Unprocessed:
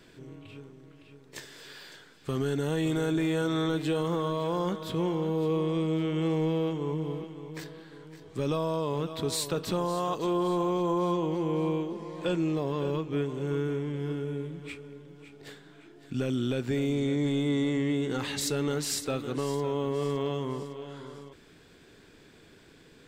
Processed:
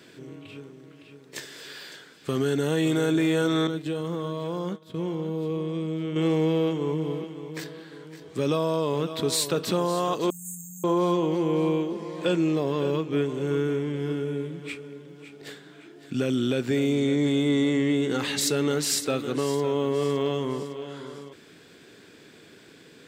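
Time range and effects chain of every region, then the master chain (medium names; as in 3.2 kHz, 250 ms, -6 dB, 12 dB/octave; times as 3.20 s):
3.67–6.16 s: expander -26 dBFS + bass shelf 200 Hz +9 dB + compression 4:1, threshold -31 dBFS
10.30–10.84 s: brick-wall FIR band-stop 190–6300 Hz + RIAA curve recording
whole clip: Bessel high-pass 170 Hz; peaking EQ 910 Hz -3.5 dB 0.85 oct; trim +6 dB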